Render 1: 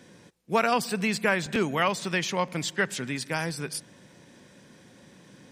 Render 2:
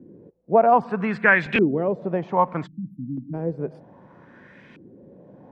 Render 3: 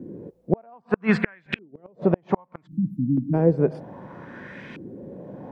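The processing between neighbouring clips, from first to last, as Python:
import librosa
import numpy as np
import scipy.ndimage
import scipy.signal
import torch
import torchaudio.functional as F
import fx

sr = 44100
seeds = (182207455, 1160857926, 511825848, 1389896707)

y1 = fx.spec_erase(x, sr, start_s=2.67, length_s=0.67, low_hz=320.0, high_hz=11000.0)
y1 = fx.filter_lfo_lowpass(y1, sr, shape='saw_up', hz=0.63, low_hz=310.0, high_hz=2600.0, q=2.8)
y1 = y1 * librosa.db_to_amplitude(3.0)
y2 = fx.gate_flip(y1, sr, shuts_db=-14.0, range_db=-40)
y2 = y2 * librosa.db_to_amplitude(8.5)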